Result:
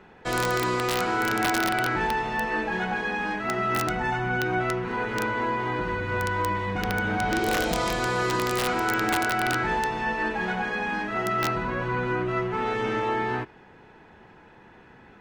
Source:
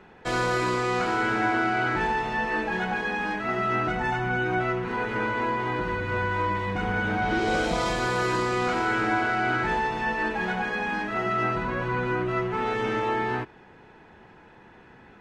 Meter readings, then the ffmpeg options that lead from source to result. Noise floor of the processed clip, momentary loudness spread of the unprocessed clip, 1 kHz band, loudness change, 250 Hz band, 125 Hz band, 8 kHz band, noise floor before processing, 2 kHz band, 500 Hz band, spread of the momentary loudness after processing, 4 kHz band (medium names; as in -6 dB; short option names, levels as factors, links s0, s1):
-52 dBFS, 4 LU, 0.0 dB, 0.0 dB, 0.0 dB, 0.0 dB, +7.0 dB, -52 dBFS, 0.0 dB, 0.0 dB, 4 LU, +3.0 dB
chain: -af "aeval=exprs='(mod(6.31*val(0)+1,2)-1)/6.31':c=same,bandreject=f=354:t=h:w=4,bandreject=f=708:t=h:w=4,bandreject=f=1062:t=h:w=4,bandreject=f=1416:t=h:w=4,bandreject=f=1770:t=h:w=4,bandreject=f=2124:t=h:w=4,bandreject=f=2478:t=h:w=4,bandreject=f=2832:t=h:w=4,bandreject=f=3186:t=h:w=4,bandreject=f=3540:t=h:w=4,bandreject=f=3894:t=h:w=4,bandreject=f=4248:t=h:w=4,bandreject=f=4602:t=h:w=4,bandreject=f=4956:t=h:w=4,bandreject=f=5310:t=h:w=4,bandreject=f=5664:t=h:w=4"